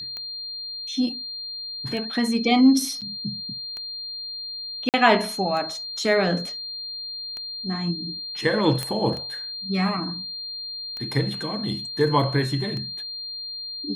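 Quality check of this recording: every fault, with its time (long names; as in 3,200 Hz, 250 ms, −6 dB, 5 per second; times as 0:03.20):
scratch tick 33 1/3 rpm −21 dBFS
whistle 4,200 Hz −31 dBFS
0:03.01–0:03.02: drop-out 7.4 ms
0:04.89–0:04.94: drop-out 48 ms
0:08.83: click −12 dBFS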